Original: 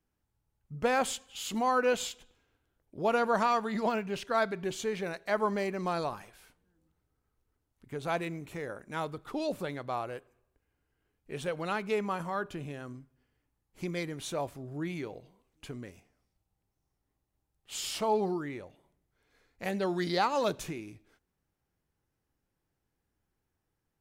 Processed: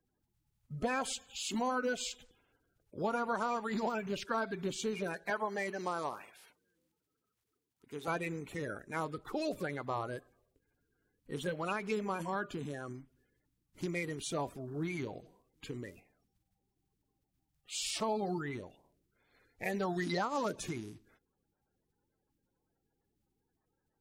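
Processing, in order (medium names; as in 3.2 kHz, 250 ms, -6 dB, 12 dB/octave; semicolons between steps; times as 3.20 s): coarse spectral quantiser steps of 30 dB; 5.30–8.08 s: high-pass 440 Hz 6 dB/octave; compression 4:1, threshold -31 dBFS, peak gain reduction 7 dB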